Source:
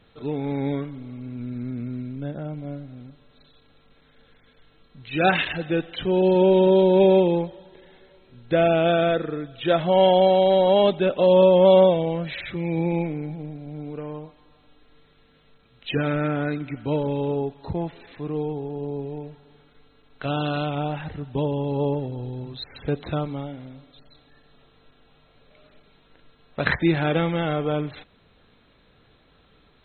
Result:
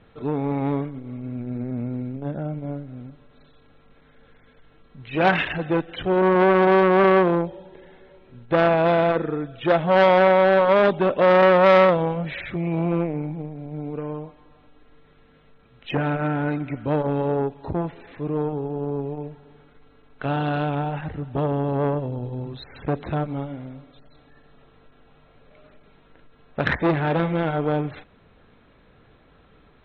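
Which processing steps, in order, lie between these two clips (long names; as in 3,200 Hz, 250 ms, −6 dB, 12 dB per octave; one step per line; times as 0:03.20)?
low-pass filter 2,300 Hz 12 dB per octave
saturating transformer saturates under 1,300 Hz
level +4 dB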